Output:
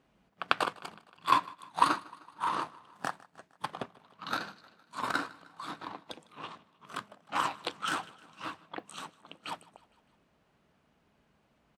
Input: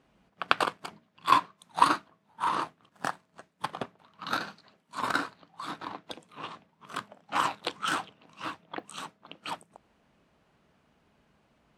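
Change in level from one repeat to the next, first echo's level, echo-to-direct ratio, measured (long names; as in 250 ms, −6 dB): −4.5 dB, −22.5 dB, −20.5 dB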